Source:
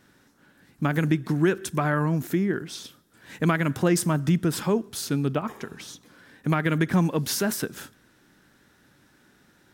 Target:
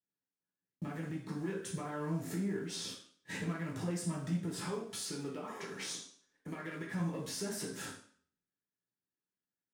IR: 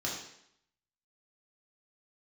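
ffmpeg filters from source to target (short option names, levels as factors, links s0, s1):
-filter_complex "[0:a]agate=range=0.00447:threshold=0.00447:ratio=16:detection=peak,asettb=1/sr,asplit=3[s0][s1][s2];[s0]atrim=end=4.684[s3];[s1]atrim=start=4.68:end=7,asetpts=PTS-STARTPTS,afade=t=in:d=0.004:c=qsin,afade=t=out:st=2.316:d=0.004:c=qsin,equalizer=f=74:w=0.31:g=-12[s4];[s2]atrim=start=6.996[s5];[s3][s4]acrossfade=d=0.004:c1=hsin:c2=qsin[s6];[s6][s5]acrossfade=d=0.004:c1=qsin:c2=hsin,acompressor=threshold=0.0178:ratio=6,alimiter=level_in=2.99:limit=0.0631:level=0:latency=1:release=330,volume=0.335,acrusher=bits=6:mode=log:mix=0:aa=0.000001,asoftclip=type=tanh:threshold=0.0168[s7];[1:a]atrim=start_sample=2205,asetrate=61740,aresample=44100[s8];[s7][s8]afir=irnorm=-1:irlink=0,volume=1.41"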